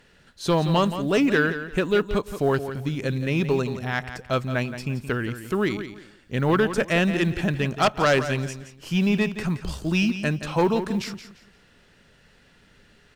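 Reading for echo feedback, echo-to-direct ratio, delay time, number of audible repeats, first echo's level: 25%, −10.5 dB, 172 ms, 2, −11.0 dB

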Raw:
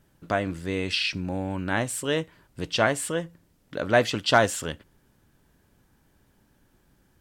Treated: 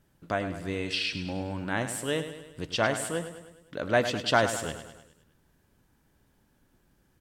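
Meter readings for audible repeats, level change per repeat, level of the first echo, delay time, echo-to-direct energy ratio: 5, −5.5 dB, −10.5 dB, 103 ms, −9.0 dB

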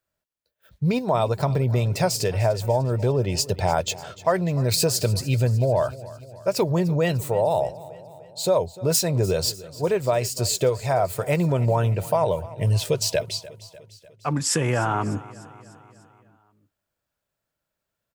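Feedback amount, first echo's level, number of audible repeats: 57%, −18.5 dB, 4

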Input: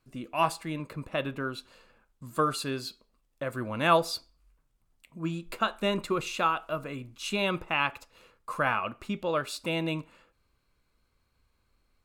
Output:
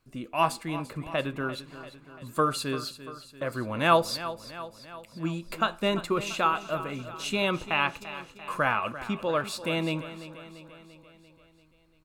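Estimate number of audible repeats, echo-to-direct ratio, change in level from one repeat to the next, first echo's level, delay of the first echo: 5, −12.0 dB, −4.5 dB, −14.0 dB, 342 ms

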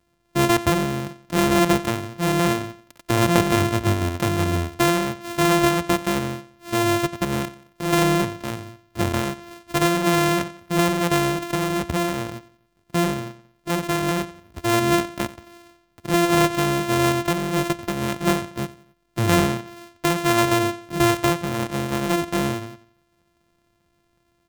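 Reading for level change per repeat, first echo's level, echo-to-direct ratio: −7.5 dB, −19.0 dB, −18.0 dB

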